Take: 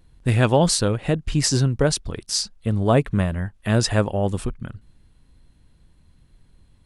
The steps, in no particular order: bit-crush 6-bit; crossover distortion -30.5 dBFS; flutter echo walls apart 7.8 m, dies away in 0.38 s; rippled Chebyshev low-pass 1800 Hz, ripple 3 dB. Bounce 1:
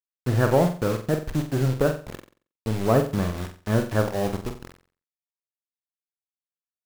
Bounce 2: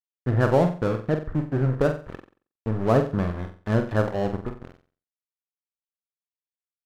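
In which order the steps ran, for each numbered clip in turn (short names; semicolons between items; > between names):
rippled Chebyshev low-pass > crossover distortion > bit-crush > flutter echo; bit-crush > rippled Chebyshev low-pass > crossover distortion > flutter echo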